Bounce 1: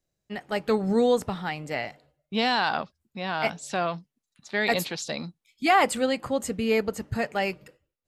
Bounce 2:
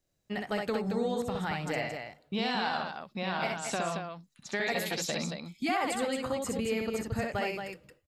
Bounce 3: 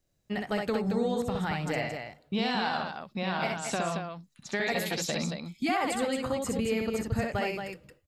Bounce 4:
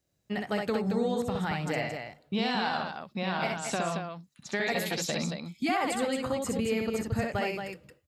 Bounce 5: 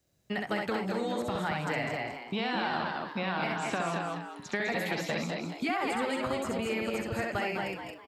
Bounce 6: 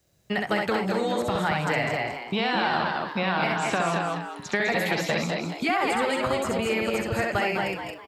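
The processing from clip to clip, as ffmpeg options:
-filter_complex "[0:a]acompressor=threshold=-32dB:ratio=4,asplit=2[a][b];[b]aecho=0:1:64.14|224.5:0.708|0.501[c];[a][c]amix=inputs=2:normalize=0,volume=1dB"
-af "lowshelf=f=210:g=4.5,volume=1dB"
-af "highpass=62"
-filter_complex "[0:a]acrossover=split=320|870|2800[a][b][c][d];[a]acompressor=threshold=-41dB:ratio=4[e];[b]acompressor=threshold=-42dB:ratio=4[f];[c]acompressor=threshold=-37dB:ratio=4[g];[d]acompressor=threshold=-53dB:ratio=4[h];[e][f][g][h]amix=inputs=4:normalize=0,asplit=2[i][j];[j]asplit=4[k][l][m][n];[k]adelay=202,afreqshift=120,volume=-7.5dB[o];[l]adelay=404,afreqshift=240,volume=-18dB[p];[m]adelay=606,afreqshift=360,volume=-28.4dB[q];[n]adelay=808,afreqshift=480,volume=-38.9dB[r];[o][p][q][r]amix=inputs=4:normalize=0[s];[i][s]amix=inputs=2:normalize=0,volume=4dB"
-af "equalizer=f=260:w=3:g=-4.5,volume=7dB"

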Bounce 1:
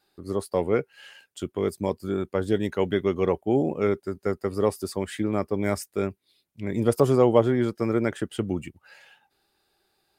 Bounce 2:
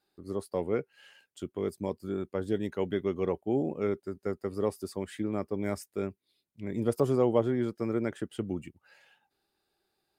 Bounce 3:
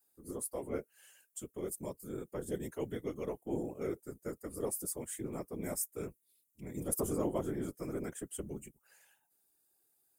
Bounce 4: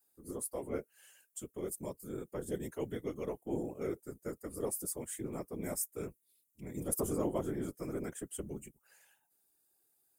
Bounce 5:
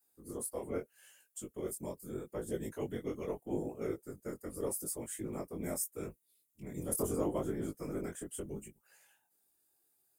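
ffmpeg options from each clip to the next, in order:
-af "equalizer=f=260:t=o:w=2.3:g=3.5,volume=-9dB"
-af "aexciter=amount=9:drive=6.4:freq=6.3k,afftfilt=real='hypot(re,im)*cos(2*PI*random(0))':imag='hypot(re,im)*sin(2*PI*random(1))':win_size=512:overlap=0.75,volume=-2.5dB"
-af anull
-af "flanger=delay=18:depth=5:speed=0.79,volume=3dB"

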